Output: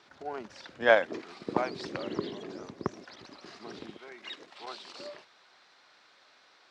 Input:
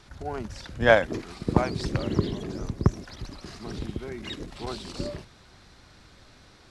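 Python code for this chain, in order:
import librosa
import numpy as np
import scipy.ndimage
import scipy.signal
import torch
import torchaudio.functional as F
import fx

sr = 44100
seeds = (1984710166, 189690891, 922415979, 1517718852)

y = fx.bandpass_edges(x, sr, low_hz=fx.steps((0.0, 330.0), (3.96, 650.0)), high_hz=4900.0)
y = F.gain(torch.from_numpy(y), -3.0).numpy()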